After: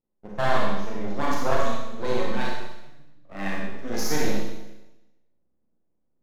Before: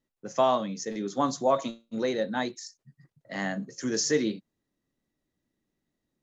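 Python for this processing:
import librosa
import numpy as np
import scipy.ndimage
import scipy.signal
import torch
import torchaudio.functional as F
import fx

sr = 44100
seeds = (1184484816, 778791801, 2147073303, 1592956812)

p1 = fx.env_lowpass(x, sr, base_hz=750.0, full_db=-21.0)
p2 = p1 + fx.room_early_taps(p1, sr, ms=(34, 62), db=(-10.0, -7.5), dry=0)
p3 = np.maximum(p2, 0.0)
y = fx.rev_schroeder(p3, sr, rt60_s=0.99, comb_ms=30, drr_db=-3.0)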